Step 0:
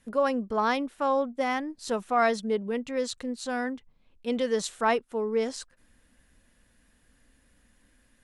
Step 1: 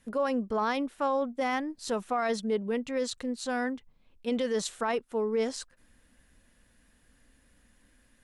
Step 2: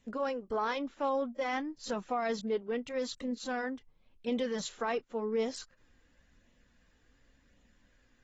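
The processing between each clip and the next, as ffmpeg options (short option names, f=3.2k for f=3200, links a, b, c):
-af "alimiter=limit=-20.5dB:level=0:latency=1:release=16"
-af "flanger=delay=0.3:depth=2.3:regen=-51:speed=0.92:shape=sinusoidal" -ar 32000 -c:a aac -b:a 24k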